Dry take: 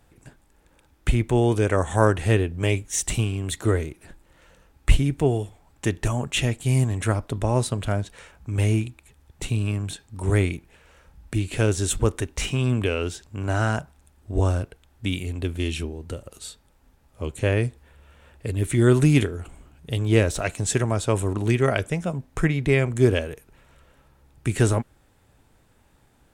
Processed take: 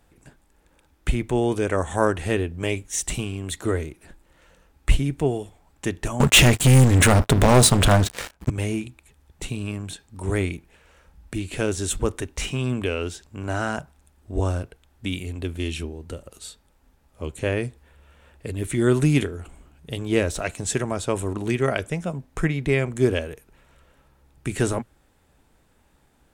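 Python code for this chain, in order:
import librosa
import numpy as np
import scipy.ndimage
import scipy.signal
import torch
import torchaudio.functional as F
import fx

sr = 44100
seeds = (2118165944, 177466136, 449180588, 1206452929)

y = fx.leveller(x, sr, passes=5, at=(6.2, 8.5))
y = fx.peak_eq(y, sr, hz=110.0, db=-11.5, octaves=0.21)
y = y * 10.0 ** (-1.0 / 20.0)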